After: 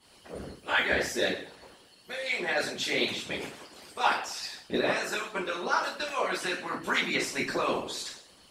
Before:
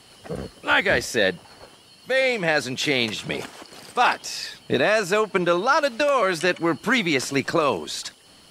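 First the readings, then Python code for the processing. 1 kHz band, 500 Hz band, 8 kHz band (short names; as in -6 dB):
-7.5 dB, -10.0 dB, -5.5 dB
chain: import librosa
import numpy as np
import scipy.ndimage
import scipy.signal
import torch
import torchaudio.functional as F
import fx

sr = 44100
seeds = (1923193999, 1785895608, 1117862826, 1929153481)

y = fx.rev_double_slope(x, sr, seeds[0], early_s=0.54, late_s=2.1, knee_db=-27, drr_db=-5.5)
y = fx.hpss(y, sr, part='harmonic', gain_db=-17)
y = y * librosa.db_to_amplitude(-8.0)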